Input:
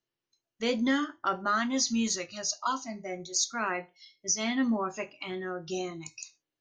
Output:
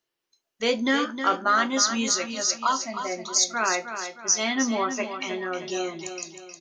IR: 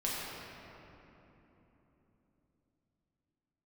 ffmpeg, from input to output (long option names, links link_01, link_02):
-af "bass=frequency=250:gain=-11,treble=frequency=4000:gain=0,aecho=1:1:312|624|936|1248|1560:0.355|0.149|0.0626|0.0263|0.011,acontrast=69"